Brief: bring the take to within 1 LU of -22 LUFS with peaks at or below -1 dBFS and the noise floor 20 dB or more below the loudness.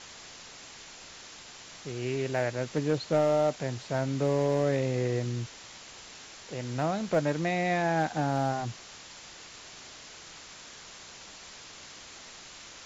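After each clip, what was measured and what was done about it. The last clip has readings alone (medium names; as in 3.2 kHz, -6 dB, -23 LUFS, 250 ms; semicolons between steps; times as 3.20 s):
clipped samples 0.3%; clipping level -17.5 dBFS; noise floor -48 dBFS; noise floor target -50 dBFS; loudness -29.5 LUFS; peak level -17.5 dBFS; loudness target -22.0 LUFS
-> clip repair -17.5 dBFS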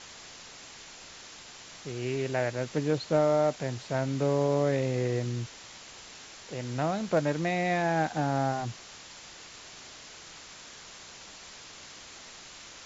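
clipped samples 0.0%; noise floor -48 dBFS; noise floor target -49 dBFS
-> noise reduction 6 dB, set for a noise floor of -48 dBFS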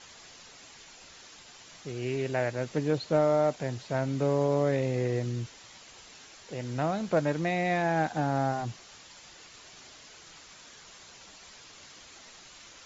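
noise floor -52 dBFS; loudness -29.0 LUFS; peak level -13.5 dBFS; loudness target -22.0 LUFS
-> trim +7 dB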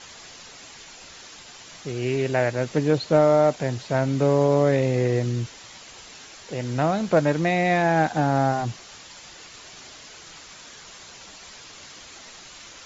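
loudness -22.0 LUFS; peak level -6.5 dBFS; noise floor -45 dBFS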